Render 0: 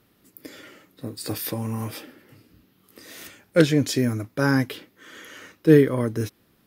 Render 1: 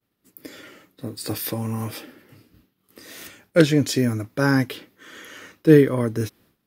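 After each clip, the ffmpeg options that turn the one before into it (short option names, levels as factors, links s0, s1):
-af "agate=range=0.0224:threshold=0.00251:ratio=3:detection=peak,volume=1.19"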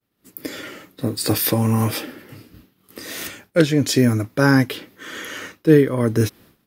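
-af "dynaudnorm=f=130:g=3:m=3.35,volume=0.891"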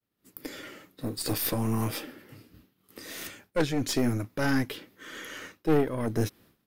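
-af "aeval=exprs='(tanh(3.98*val(0)+0.65)-tanh(0.65))/3.98':c=same,volume=0.531"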